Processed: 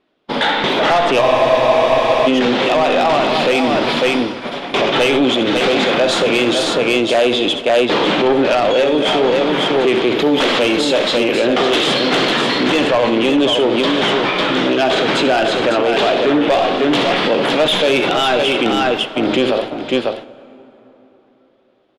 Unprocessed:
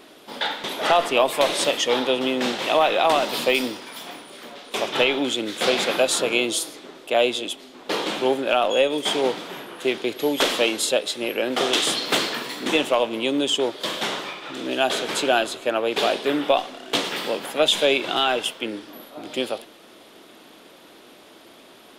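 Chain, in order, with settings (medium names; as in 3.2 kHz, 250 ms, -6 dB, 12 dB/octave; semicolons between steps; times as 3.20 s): low-pass 3.4 kHz 12 dB/octave; gate -39 dBFS, range -35 dB; bass shelf 190 Hz +7.5 dB; de-hum 109.3 Hz, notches 17; saturation -16.5 dBFS, distortion -13 dB; multi-tap echo 65/81/550 ms -12.5/-17/-7 dB; on a send at -19.5 dB: reverberation RT60 4.1 s, pre-delay 13 ms; on the sum: loudness maximiser +23.5 dB; spectral freeze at 1.24 s, 1.02 s; trim -6.5 dB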